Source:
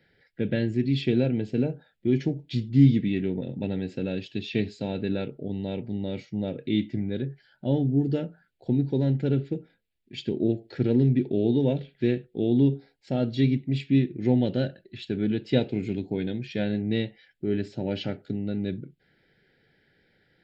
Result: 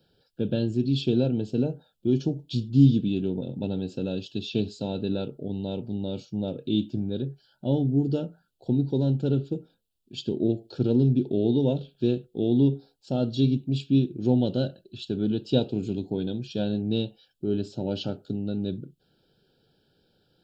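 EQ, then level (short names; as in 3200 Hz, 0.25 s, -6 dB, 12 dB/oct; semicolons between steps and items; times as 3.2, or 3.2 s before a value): Butterworth band-stop 2000 Hz, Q 1.3; high shelf 4300 Hz +7 dB; 0.0 dB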